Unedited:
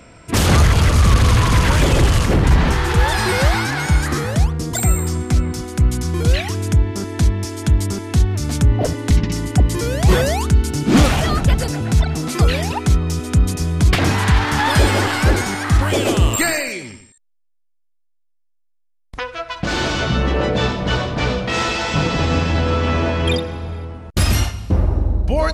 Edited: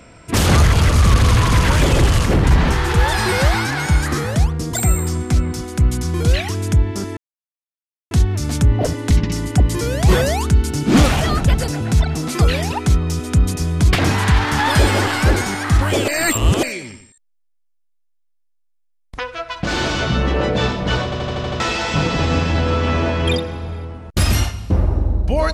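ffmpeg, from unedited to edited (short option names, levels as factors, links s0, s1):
-filter_complex "[0:a]asplit=12[s0][s1][s2][s3][s4][s5][s6][s7][s8][s9][s10][s11];[s0]atrim=end=7.17,asetpts=PTS-STARTPTS,afade=t=out:st=7.166:d=0.004:c=hsin[s12];[s1]atrim=start=7.17:end=8.11,asetpts=PTS-STARTPTS,volume=0[s13];[s2]atrim=start=8.11:end=16.082,asetpts=PTS-STARTPTS,afade=t=in:d=0.004:c=hsin[s14];[s3]atrim=start=16.078:end=16.632,asetpts=PTS-STARTPTS,areverse[s15];[s4]atrim=start=16.628:end=21.122[s16];[s5]atrim=start=21.038:end=21.122[s17];[s6]atrim=start=21.038:end=21.122[s18];[s7]atrim=start=21.038:end=21.122[s19];[s8]atrim=start=21.038:end=21.122[s20];[s9]atrim=start=21.038:end=21.122[s21];[s10]atrim=start=21.038:end=21.122[s22];[s11]atrim=start=21.598[s23];[s12][s13][s14]concat=n=3:v=0:a=1[s24];[s24][s15]acrossfade=d=0.004:c1=hsin:c2=hsin[s25];[s25][s16]acrossfade=d=0.004:c1=hsin:c2=hsin[s26];[s26][s17]acrossfade=d=0.004:c1=hsin:c2=hsin[s27];[s27][s18]acrossfade=d=0.004:c1=hsin:c2=hsin[s28];[s28][s19]acrossfade=d=0.004:c1=hsin:c2=hsin[s29];[s29][s20]acrossfade=d=0.004:c1=hsin:c2=hsin[s30];[s30][s21]acrossfade=d=0.004:c1=hsin:c2=hsin[s31];[s31][s22]acrossfade=d=0.004:c1=hsin:c2=hsin[s32];[s32][s23]acrossfade=d=0.004:c1=hsin:c2=hsin"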